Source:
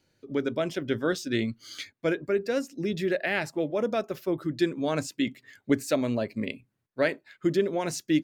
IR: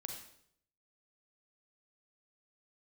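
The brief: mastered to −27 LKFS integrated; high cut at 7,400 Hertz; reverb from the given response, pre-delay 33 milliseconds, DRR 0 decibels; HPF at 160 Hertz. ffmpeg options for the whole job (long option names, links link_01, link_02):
-filter_complex "[0:a]highpass=160,lowpass=7400,asplit=2[link_01][link_02];[1:a]atrim=start_sample=2205,adelay=33[link_03];[link_02][link_03]afir=irnorm=-1:irlink=0,volume=2.5dB[link_04];[link_01][link_04]amix=inputs=2:normalize=0,volume=-1dB"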